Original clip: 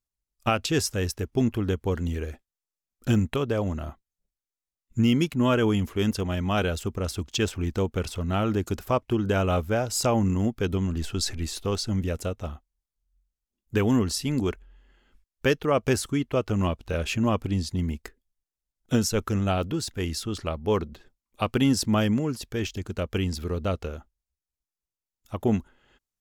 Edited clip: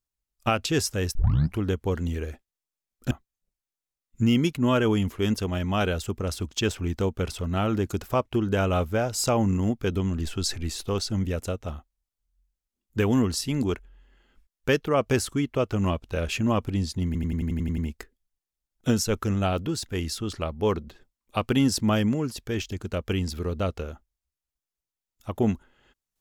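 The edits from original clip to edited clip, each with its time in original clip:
1.15 s: tape start 0.44 s
3.11–3.88 s: delete
17.83 s: stutter 0.09 s, 9 plays

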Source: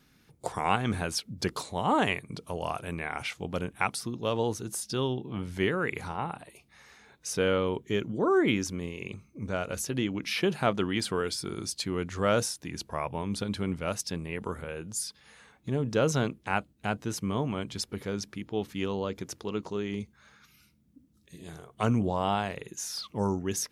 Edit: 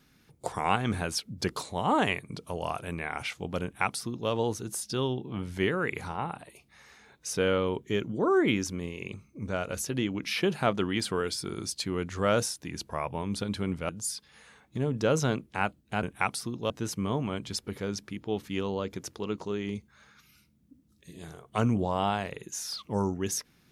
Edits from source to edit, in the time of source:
3.63–4.30 s: copy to 16.95 s
13.89–14.81 s: delete

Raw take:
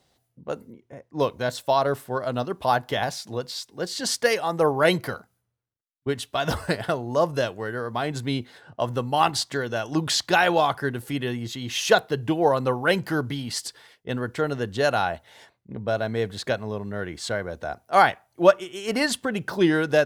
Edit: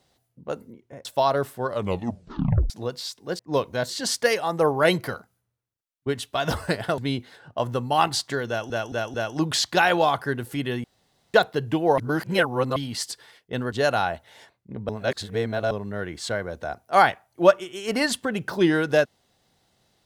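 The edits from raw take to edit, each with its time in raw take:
1.05–1.56 s: move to 3.90 s
2.18 s: tape stop 1.03 s
6.98–8.20 s: delete
9.70 s: stutter 0.22 s, 4 plays
11.40–11.90 s: room tone
12.54–13.32 s: reverse
14.28–14.72 s: delete
15.89–16.71 s: reverse

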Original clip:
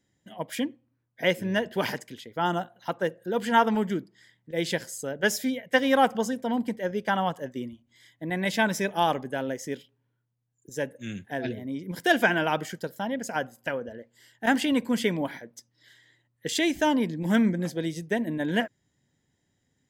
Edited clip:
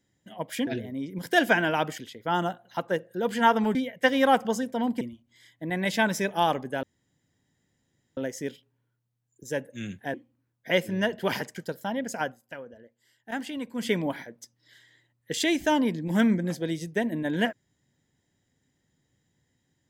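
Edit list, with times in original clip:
0.67–2.09 s: swap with 11.40–12.71 s
3.86–5.45 s: delete
6.71–7.61 s: delete
9.43 s: insert room tone 1.34 s
13.36–15.07 s: dip -10 dB, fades 0.18 s

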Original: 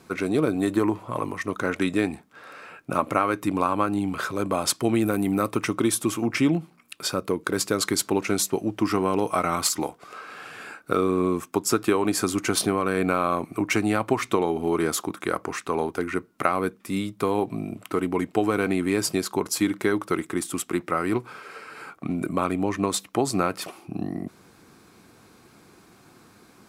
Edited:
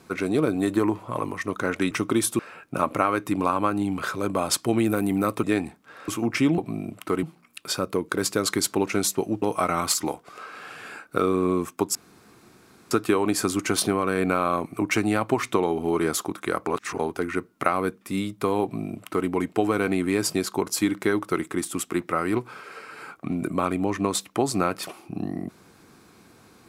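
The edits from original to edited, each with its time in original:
1.91–2.55 s: swap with 5.60–6.08 s
8.77–9.17 s: delete
11.70 s: insert room tone 0.96 s
15.46–15.78 s: reverse
17.42–18.07 s: copy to 6.58 s

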